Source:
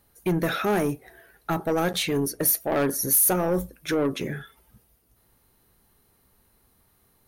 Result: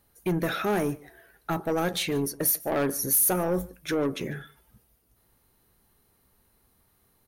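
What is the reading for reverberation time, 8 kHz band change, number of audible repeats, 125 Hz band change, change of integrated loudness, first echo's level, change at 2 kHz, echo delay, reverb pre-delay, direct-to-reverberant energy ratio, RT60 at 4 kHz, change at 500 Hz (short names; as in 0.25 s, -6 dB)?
none, -2.5 dB, 1, -2.5 dB, -2.5 dB, -23.5 dB, -2.5 dB, 0.146 s, none, none, none, -2.5 dB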